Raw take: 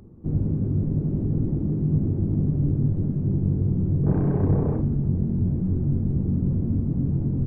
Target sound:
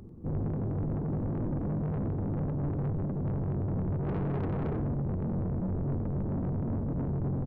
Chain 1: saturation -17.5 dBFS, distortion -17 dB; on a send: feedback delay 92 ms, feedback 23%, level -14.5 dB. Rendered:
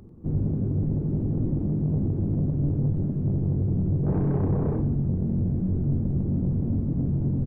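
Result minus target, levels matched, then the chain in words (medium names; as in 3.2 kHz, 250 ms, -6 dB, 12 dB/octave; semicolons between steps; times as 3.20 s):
saturation: distortion -10 dB
saturation -29 dBFS, distortion -7 dB; on a send: feedback delay 92 ms, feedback 23%, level -14.5 dB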